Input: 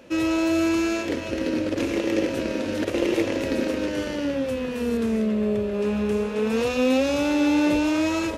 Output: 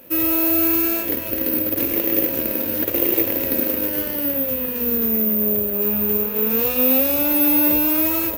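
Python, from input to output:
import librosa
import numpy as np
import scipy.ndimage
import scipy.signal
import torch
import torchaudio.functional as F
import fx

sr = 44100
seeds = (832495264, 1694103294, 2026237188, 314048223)

y = (np.kron(x[::3], np.eye(3)[0]) * 3)[:len(x)]
y = y * 10.0 ** (-1.0 / 20.0)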